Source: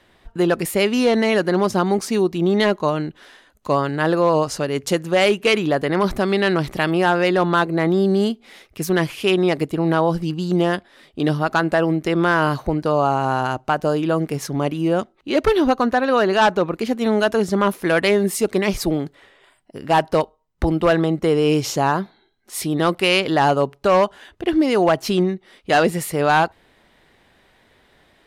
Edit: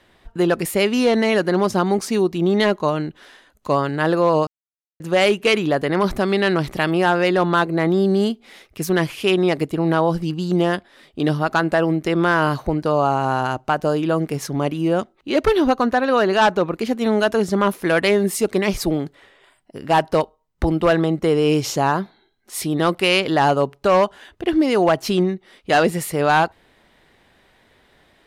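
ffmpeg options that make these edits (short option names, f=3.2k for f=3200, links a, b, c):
-filter_complex "[0:a]asplit=3[a][b][c];[a]atrim=end=4.47,asetpts=PTS-STARTPTS,afade=t=out:st=4.466:d=0.004:c=hsin[d];[b]atrim=start=4.47:end=5,asetpts=PTS-STARTPTS,volume=0[e];[c]atrim=start=5,asetpts=PTS-STARTPTS,afade=t=in:d=0.004:c=hsin[f];[d][e][f]concat=n=3:v=0:a=1"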